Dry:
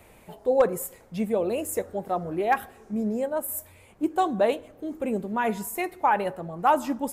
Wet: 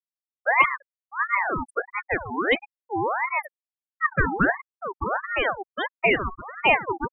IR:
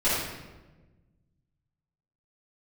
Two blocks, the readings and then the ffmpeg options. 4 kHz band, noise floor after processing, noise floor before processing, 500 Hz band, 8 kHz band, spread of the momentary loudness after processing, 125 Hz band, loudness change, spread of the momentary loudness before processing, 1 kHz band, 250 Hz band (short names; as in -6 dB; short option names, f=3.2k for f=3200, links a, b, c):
+9.5 dB, under -85 dBFS, -54 dBFS, -3.0 dB, under -25 dB, 11 LU, +3.5 dB, +2.5 dB, 9 LU, +1.0 dB, -3.5 dB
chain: -filter_complex "[0:a]asplit=2[a][b];[1:a]atrim=start_sample=2205[c];[b][c]afir=irnorm=-1:irlink=0,volume=-29dB[d];[a][d]amix=inputs=2:normalize=0,afftfilt=real='re*gte(hypot(re,im),0.126)':imag='im*gte(hypot(re,im),0.126)':win_size=1024:overlap=0.75,aeval=exprs='val(0)*sin(2*PI*1100*n/s+1100*0.5/1.5*sin(2*PI*1.5*n/s))':c=same,volume=4dB"